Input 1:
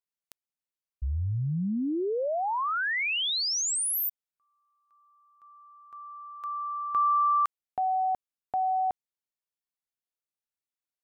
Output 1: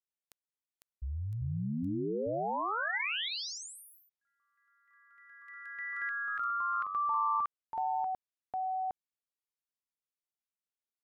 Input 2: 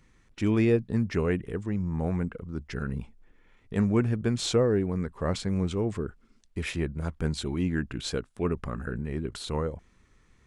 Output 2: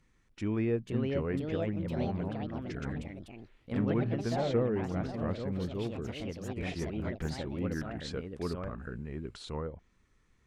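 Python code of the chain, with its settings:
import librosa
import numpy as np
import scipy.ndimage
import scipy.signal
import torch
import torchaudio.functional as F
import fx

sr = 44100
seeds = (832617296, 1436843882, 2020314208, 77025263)

y = fx.env_lowpass_down(x, sr, base_hz=2500.0, full_db=-25.0)
y = fx.echo_pitch(y, sr, ms=552, semitones=3, count=3, db_per_echo=-3.0)
y = y * librosa.db_to_amplitude(-7.5)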